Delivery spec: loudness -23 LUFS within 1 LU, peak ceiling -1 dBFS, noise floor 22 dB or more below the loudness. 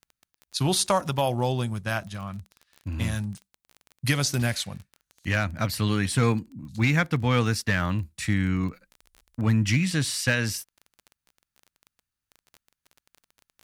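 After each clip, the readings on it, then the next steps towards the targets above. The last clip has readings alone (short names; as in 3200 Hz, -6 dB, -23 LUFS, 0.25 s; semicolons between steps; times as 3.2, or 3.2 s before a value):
ticks 22/s; loudness -26.0 LUFS; peak -12.0 dBFS; loudness target -23.0 LUFS
-> de-click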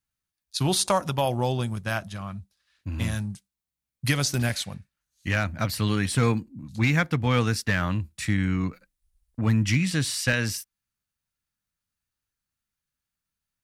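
ticks 0.29/s; loudness -26.0 LUFS; peak -10.5 dBFS; loudness target -23.0 LUFS
-> gain +3 dB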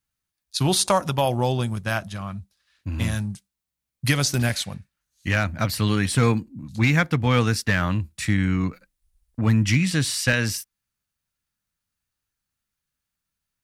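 loudness -23.0 LUFS; peak -7.5 dBFS; noise floor -84 dBFS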